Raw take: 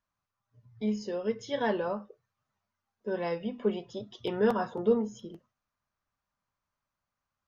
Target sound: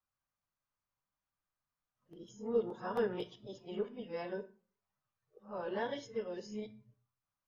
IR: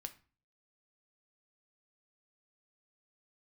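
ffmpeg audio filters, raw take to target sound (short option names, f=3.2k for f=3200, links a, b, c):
-filter_complex "[0:a]areverse[a];[1:a]atrim=start_sample=2205[b];[a][b]afir=irnorm=-1:irlink=0,volume=-3.5dB"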